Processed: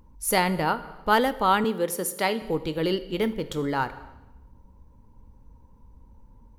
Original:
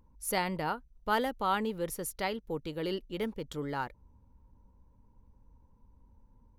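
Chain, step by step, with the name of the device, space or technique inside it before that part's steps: compressed reverb return (on a send at -9.5 dB: reverberation RT60 0.90 s, pre-delay 14 ms + compression, threshold -33 dBFS, peak gain reduction 7.5 dB); 1.64–2.42 s: on the sum: high-pass 180 Hz 24 dB/octave; trim +8.5 dB

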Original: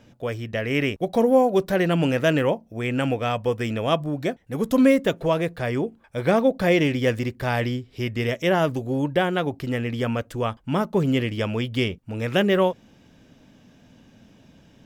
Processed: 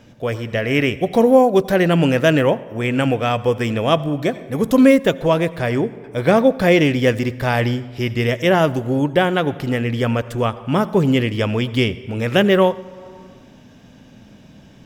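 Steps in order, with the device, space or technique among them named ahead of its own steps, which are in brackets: compressed reverb return (on a send at -4 dB: reverberation RT60 1.2 s, pre-delay 74 ms + compression 4:1, threshold -35 dBFS, peak gain reduction 20 dB); on the sum: trim +5.5 dB

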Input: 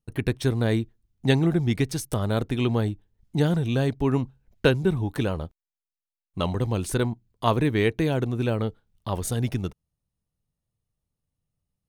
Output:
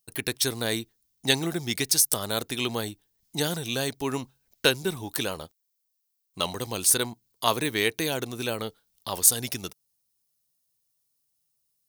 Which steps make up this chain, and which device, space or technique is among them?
RIAA curve recording; presence and air boost (peaking EQ 5 kHz +6 dB 0.85 oct; treble shelf 10 kHz +5 dB); trim -1 dB

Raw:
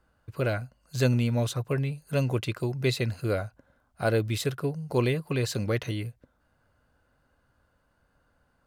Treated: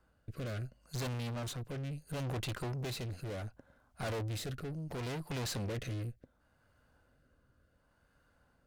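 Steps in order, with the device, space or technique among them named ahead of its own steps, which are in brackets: overdriven rotary cabinet (valve stage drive 40 dB, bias 0.75; rotary cabinet horn 0.7 Hz); trim +5 dB

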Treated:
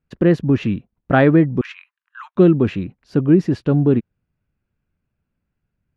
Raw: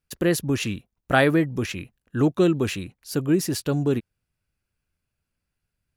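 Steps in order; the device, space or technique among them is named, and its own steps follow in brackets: phone in a pocket (low-pass 3.1 kHz 12 dB/octave; peaking EQ 200 Hz +6 dB 1.6 oct; treble shelf 2.4 kHz -9 dB); 1.61–2.36 s: steep high-pass 970 Hz 72 dB/octave; trim +4 dB

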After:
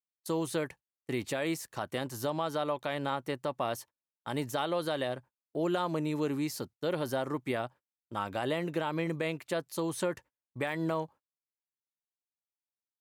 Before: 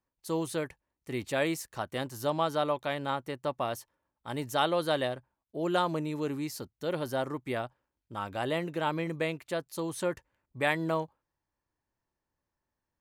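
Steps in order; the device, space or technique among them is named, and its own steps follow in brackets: gate -50 dBFS, range -30 dB; podcast mastering chain (high-pass 100 Hz; de-esser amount 80%; compression 3:1, threshold -30 dBFS, peak gain reduction 6.5 dB; peak limiter -23.5 dBFS, peak gain reduction 5 dB; trim +3.5 dB; MP3 128 kbps 48 kHz)

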